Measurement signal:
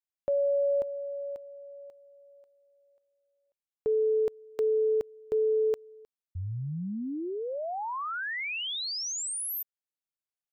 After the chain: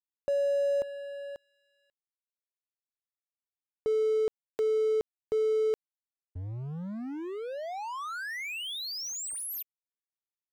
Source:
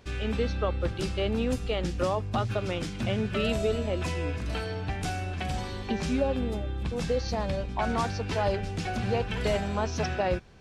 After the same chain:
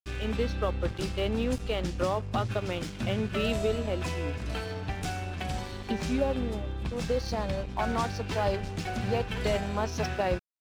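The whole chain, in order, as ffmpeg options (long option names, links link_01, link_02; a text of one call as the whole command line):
ffmpeg -i in.wav -af "aeval=exprs='sgn(val(0))*max(abs(val(0))-0.00668,0)':channel_layout=same" out.wav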